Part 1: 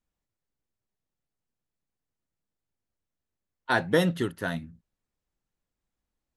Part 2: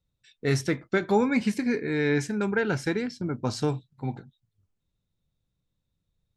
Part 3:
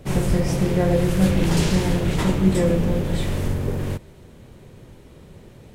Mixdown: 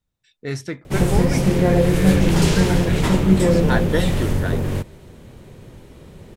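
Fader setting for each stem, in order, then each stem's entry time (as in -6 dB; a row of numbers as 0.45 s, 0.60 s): +1.0 dB, -2.5 dB, +3.0 dB; 0.00 s, 0.00 s, 0.85 s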